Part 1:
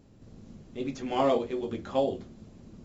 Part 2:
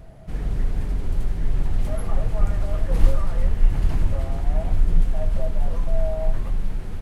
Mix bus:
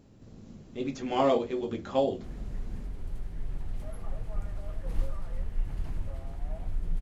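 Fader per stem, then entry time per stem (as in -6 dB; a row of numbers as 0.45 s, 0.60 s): +0.5 dB, -13.5 dB; 0.00 s, 1.95 s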